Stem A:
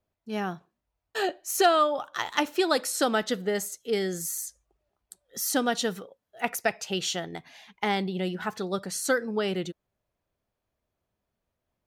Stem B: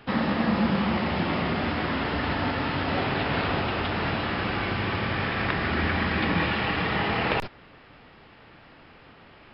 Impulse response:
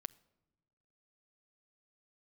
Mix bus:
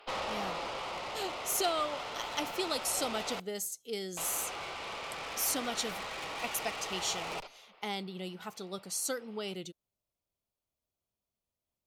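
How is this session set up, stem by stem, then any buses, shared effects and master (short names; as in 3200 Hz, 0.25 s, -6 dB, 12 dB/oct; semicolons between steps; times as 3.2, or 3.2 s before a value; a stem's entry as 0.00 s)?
-11.5 dB, 0.00 s, no send, high shelf 2700 Hz +10.5 dB
+0.5 dB, 0.00 s, muted 3.4–4.17, send -7.5 dB, inverse Chebyshev high-pass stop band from 180 Hz, stop band 50 dB; tube stage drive 32 dB, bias 0.75; auto duck -8 dB, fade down 1.20 s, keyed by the first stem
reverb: on, pre-delay 7 ms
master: bell 1700 Hz -11 dB 0.35 oct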